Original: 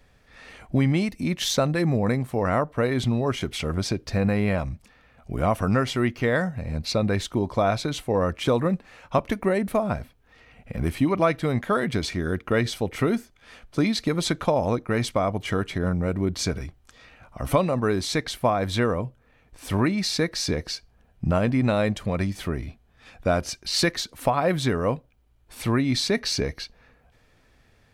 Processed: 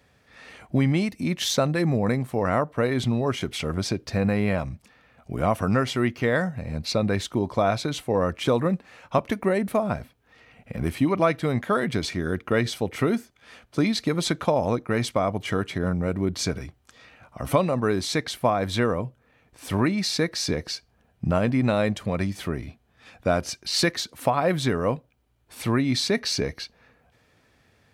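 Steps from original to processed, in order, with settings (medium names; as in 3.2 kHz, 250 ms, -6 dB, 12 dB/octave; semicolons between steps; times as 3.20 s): high-pass 83 Hz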